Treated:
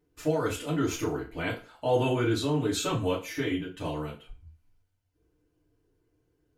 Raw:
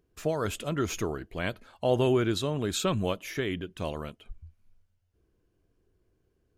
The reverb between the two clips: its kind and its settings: FDN reverb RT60 0.35 s, low-frequency decay 0.85×, high-frequency decay 0.85×, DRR -7.5 dB; trim -7.5 dB

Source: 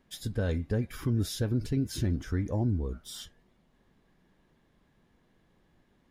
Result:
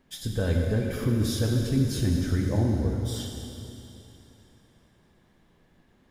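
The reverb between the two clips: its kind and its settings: plate-style reverb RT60 3.1 s, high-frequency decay 1×, DRR 0.5 dB; trim +2.5 dB

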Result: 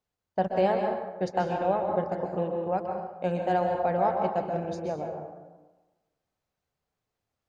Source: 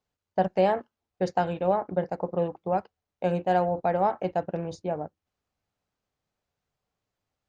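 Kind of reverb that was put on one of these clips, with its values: plate-style reverb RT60 1.2 s, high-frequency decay 0.55×, pre-delay 115 ms, DRR 2.5 dB; trim -2.5 dB

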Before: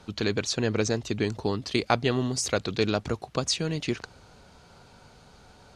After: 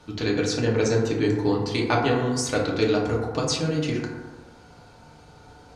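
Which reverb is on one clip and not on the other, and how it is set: FDN reverb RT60 1.3 s, low-frequency decay 0.95×, high-frequency decay 0.3×, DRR -3.5 dB; trim -2 dB

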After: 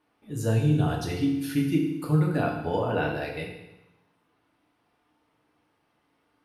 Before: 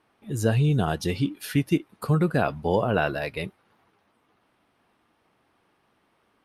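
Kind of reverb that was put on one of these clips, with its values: FDN reverb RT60 0.94 s, low-frequency decay 1.2×, high-frequency decay 1×, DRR -1 dB; trim -7 dB

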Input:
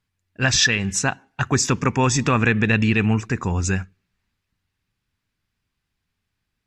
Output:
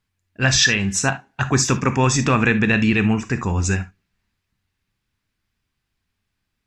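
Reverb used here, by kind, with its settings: gated-style reverb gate 90 ms flat, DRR 9.5 dB; trim +1 dB

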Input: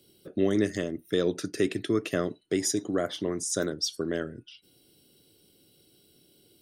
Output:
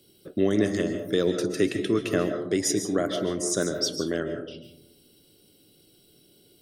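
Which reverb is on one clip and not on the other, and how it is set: algorithmic reverb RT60 0.79 s, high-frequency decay 0.25×, pre-delay 100 ms, DRR 6.5 dB; trim +2 dB

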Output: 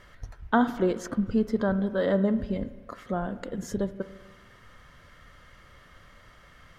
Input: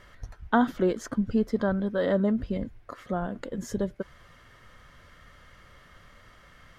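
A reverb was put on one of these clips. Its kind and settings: spring tank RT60 1.3 s, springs 31/50 ms, chirp 60 ms, DRR 13 dB

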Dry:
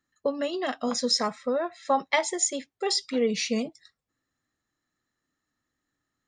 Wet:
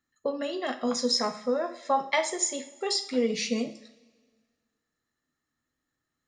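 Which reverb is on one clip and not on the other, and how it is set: two-slope reverb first 0.47 s, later 1.7 s, from -17 dB, DRR 6.5 dB; trim -2.5 dB

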